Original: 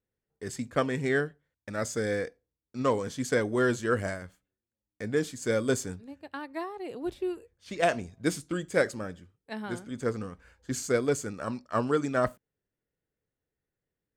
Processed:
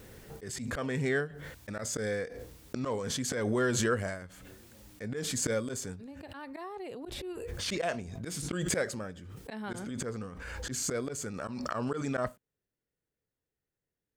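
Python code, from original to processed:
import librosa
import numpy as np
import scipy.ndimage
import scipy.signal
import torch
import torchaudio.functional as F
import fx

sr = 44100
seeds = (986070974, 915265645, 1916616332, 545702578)

y = fx.dynamic_eq(x, sr, hz=310.0, q=5.1, threshold_db=-47.0, ratio=4.0, max_db=-6)
y = fx.auto_swell(y, sr, attack_ms=102.0)
y = fx.pre_swell(y, sr, db_per_s=22.0)
y = y * 10.0 ** (-3.0 / 20.0)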